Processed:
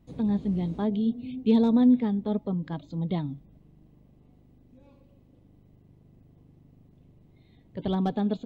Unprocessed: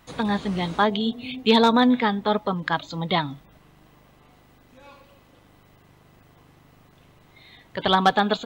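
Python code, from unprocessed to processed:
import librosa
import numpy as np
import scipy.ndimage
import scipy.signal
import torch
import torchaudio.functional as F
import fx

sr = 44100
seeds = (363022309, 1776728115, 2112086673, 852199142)

y = fx.curve_eq(x, sr, hz=(250.0, 620.0, 1400.0, 2200.0), db=(0, -11, -25, -20))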